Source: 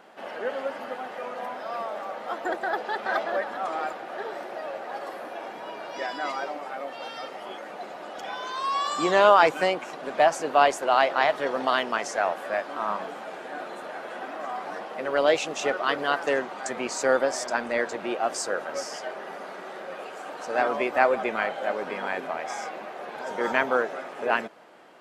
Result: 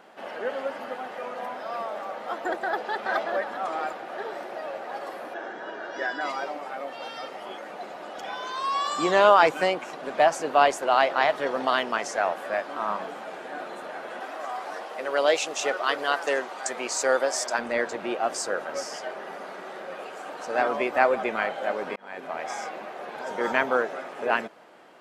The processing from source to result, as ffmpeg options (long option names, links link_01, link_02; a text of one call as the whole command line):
ffmpeg -i in.wav -filter_complex "[0:a]asettb=1/sr,asplit=3[link_01][link_02][link_03];[link_01]atrim=end=5.344[link_04];[link_02]atrim=start=5.34:end=6.21,asetpts=PTS-STARTPTS,afade=type=in:duration=0.004:curve=qsin,afade=type=out:start_time=0.866:duration=0.004:curve=qsin,highpass=160,equalizer=frequency=360:width_type=q:width=4:gain=5,equalizer=frequency=1000:width_type=q:width=4:gain=-4,equalizer=frequency=1600:width_type=q:width=4:gain=10,equalizer=frequency=2400:width_type=q:width=4:gain=-8,equalizer=frequency=4600:width_type=q:width=4:gain=-6,lowpass=frequency=6800:width=0.5412,lowpass=frequency=6800:width=1.3066[link_05];[link_03]atrim=start=6.206[link_06];[link_04][link_05]acrossfade=duration=0.004:curve1=hsin:curve2=qsin[link_07];[link_07][link_06]acrossfade=duration=0.004:curve1=qsin:curve2=hsin,asettb=1/sr,asplit=3[link_08][link_09][link_10];[link_08]atrim=end=14.204[link_11];[link_09]atrim=start=14.2:end=17.59,asetpts=PTS-STARTPTS,afade=type=in:duration=0.004:curve=qsin,afade=type=out:start_time=3.386:duration=0.004:curve=qsin,bass=frequency=250:gain=-13,treble=frequency=4000:gain=5[link_12];[link_10]atrim=start=17.586[link_13];[link_11][link_12]acrossfade=duration=0.004:curve1=hsin:curve2=qsin[link_14];[link_14][link_13]acrossfade=duration=0.004:curve1=qsin:curve2=hsin,asplit=2[link_15][link_16];[link_15]atrim=end=21.96,asetpts=PTS-STARTPTS,afade=type=out:start_time=21.956:duration=0.004:curve=hsin[link_17];[link_16]atrim=start=21.96,asetpts=PTS-STARTPTS,afade=type=in:duration=0.46[link_18];[link_17][link_18]concat=n=2:v=0:a=1" out.wav